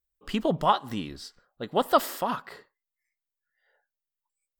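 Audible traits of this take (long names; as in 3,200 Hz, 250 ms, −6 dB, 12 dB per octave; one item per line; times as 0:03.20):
background noise floor −89 dBFS
spectral slope −4.0 dB per octave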